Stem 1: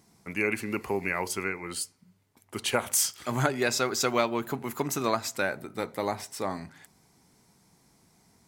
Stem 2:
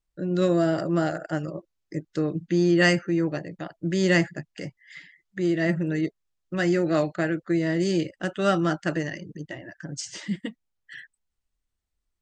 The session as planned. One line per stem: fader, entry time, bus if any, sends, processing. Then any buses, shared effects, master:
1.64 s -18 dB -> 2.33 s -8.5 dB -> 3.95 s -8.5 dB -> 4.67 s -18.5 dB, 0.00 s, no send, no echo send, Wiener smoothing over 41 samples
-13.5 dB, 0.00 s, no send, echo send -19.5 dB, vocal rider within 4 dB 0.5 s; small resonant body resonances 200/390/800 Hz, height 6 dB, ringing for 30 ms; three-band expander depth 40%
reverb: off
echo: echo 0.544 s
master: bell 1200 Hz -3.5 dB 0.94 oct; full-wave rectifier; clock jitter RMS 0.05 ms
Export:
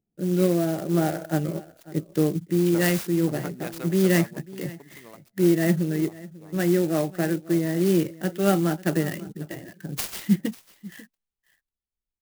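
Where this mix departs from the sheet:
stem 2 -13.5 dB -> -1.5 dB; master: missing full-wave rectifier

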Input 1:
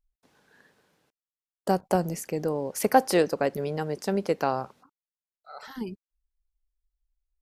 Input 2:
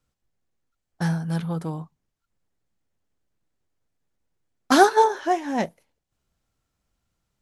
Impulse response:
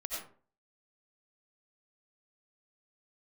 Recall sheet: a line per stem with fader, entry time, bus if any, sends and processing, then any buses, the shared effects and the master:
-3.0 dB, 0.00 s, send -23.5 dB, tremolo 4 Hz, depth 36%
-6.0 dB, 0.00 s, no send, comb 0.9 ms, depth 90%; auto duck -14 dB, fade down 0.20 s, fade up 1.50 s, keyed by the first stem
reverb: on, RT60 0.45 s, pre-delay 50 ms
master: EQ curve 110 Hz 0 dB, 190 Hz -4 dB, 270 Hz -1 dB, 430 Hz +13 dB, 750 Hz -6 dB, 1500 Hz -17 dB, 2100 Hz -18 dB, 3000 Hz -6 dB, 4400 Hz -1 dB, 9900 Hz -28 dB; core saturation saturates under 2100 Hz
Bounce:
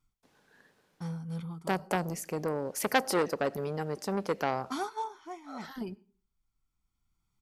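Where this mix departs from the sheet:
stem 1: missing tremolo 4 Hz, depth 36%; master: missing EQ curve 110 Hz 0 dB, 190 Hz -4 dB, 270 Hz -1 dB, 430 Hz +13 dB, 750 Hz -6 dB, 1500 Hz -17 dB, 2100 Hz -18 dB, 3000 Hz -6 dB, 4400 Hz -1 dB, 9900 Hz -28 dB

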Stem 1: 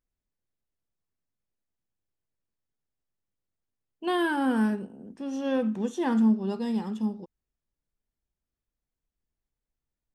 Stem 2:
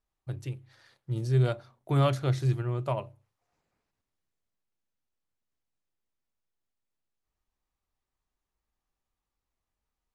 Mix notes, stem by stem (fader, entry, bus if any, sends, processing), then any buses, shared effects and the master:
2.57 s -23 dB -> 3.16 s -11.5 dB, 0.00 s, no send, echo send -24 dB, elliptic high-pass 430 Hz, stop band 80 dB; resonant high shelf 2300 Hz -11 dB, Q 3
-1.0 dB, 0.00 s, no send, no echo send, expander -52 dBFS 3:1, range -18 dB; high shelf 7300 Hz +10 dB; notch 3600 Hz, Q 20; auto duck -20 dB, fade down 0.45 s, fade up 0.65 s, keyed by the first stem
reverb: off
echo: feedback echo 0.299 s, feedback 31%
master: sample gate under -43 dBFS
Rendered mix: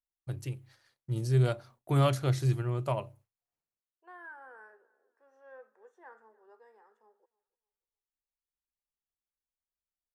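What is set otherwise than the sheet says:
stem 1 -23.0 dB -> -33.5 dB; master: missing sample gate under -43 dBFS

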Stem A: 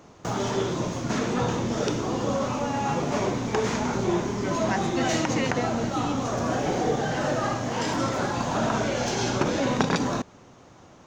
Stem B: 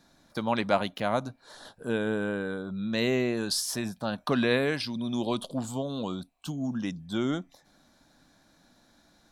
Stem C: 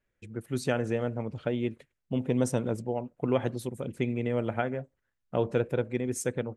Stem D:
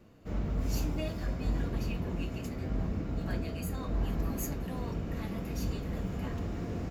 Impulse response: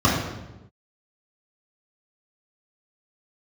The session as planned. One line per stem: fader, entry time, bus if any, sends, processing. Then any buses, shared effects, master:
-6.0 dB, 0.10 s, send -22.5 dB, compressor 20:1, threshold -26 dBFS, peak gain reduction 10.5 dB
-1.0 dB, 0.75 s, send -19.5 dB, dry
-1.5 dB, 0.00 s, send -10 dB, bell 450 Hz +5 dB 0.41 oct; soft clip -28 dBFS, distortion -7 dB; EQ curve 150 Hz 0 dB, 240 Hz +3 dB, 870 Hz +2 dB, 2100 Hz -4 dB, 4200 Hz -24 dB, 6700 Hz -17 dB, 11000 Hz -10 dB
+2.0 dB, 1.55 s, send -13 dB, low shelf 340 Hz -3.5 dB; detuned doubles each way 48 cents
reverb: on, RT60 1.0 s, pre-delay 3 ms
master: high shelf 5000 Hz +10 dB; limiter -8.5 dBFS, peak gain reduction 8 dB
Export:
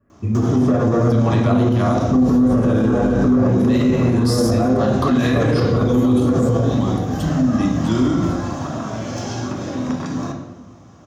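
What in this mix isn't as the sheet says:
stem D +2.0 dB -> -8.5 dB; reverb return +7.0 dB

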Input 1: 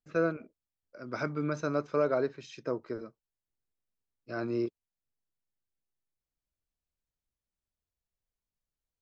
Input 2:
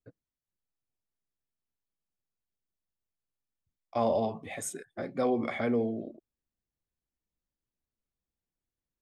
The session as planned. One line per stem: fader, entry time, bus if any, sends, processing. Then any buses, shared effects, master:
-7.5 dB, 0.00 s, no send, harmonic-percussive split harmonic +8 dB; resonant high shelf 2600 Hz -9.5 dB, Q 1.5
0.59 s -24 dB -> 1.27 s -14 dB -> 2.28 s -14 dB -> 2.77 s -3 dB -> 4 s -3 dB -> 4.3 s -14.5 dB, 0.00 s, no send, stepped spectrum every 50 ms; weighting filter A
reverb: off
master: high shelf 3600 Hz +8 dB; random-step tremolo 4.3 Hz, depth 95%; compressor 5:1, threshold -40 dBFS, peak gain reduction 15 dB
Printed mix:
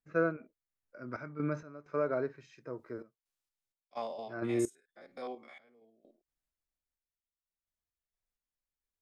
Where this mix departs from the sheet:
stem 2 -24.0 dB -> -15.5 dB; master: missing compressor 5:1, threshold -40 dBFS, peak gain reduction 15 dB

